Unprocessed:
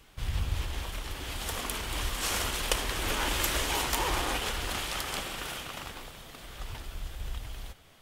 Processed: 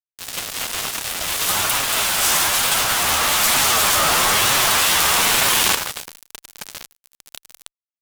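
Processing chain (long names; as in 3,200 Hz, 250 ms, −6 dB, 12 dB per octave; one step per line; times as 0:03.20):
high-pass filter 240 Hz 24 dB per octave
ring modulation 340 Hz
dynamic equaliser 1,100 Hz, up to +6 dB, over −49 dBFS, Q 1.2
flanger 1.1 Hz, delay 7.1 ms, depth 6.2 ms, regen +29%
fuzz pedal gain 49 dB, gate −45 dBFS
high-shelf EQ 3,700 Hz +8.5 dB
0:03.45–0:05.75: envelope flattener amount 100%
level −5.5 dB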